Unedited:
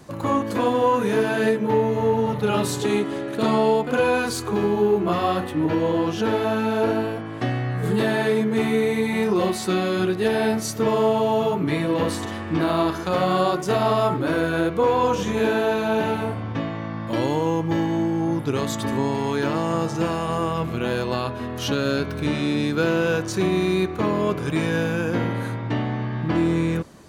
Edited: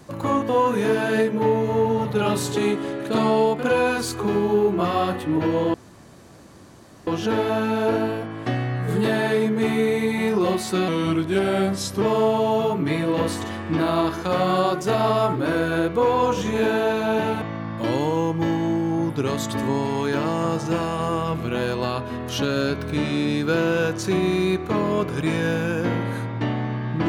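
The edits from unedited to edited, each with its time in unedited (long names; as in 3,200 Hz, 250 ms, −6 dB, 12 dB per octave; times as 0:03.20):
0:00.49–0:00.77: remove
0:06.02: splice in room tone 1.33 s
0:09.83–0:10.83: play speed 88%
0:16.23–0:16.71: remove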